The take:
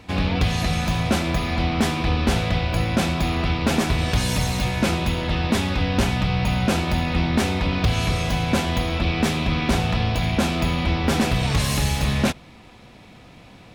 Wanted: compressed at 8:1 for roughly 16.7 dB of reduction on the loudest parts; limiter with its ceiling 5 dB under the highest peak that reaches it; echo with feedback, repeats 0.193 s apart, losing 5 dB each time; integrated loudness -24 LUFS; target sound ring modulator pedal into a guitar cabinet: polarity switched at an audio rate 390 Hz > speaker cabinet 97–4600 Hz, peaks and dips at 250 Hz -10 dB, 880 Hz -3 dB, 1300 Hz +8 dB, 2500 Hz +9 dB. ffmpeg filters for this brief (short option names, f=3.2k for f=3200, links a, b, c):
-af "acompressor=threshold=-34dB:ratio=8,alimiter=level_in=5dB:limit=-24dB:level=0:latency=1,volume=-5dB,aecho=1:1:193|386|579|772|965|1158|1351:0.562|0.315|0.176|0.0988|0.0553|0.031|0.0173,aeval=exprs='val(0)*sgn(sin(2*PI*390*n/s))':c=same,highpass=97,equalizer=f=250:t=q:w=4:g=-10,equalizer=f=880:t=q:w=4:g=-3,equalizer=f=1.3k:t=q:w=4:g=8,equalizer=f=2.5k:t=q:w=4:g=9,lowpass=f=4.6k:w=0.5412,lowpass=f=4.6k:w=1.3066,volume=10.5dB"